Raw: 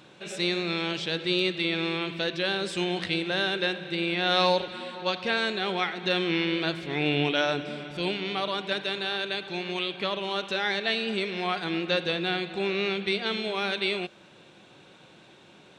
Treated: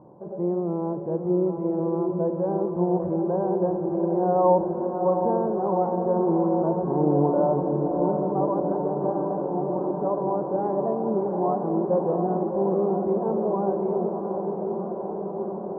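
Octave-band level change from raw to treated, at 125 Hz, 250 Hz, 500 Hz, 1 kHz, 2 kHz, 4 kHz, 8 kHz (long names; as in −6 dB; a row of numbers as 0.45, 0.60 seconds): +7.0 dB, +7.0 dB, +7.5 dB, +5.5 dB, below −25 dB, below −40 dB, below −30 dB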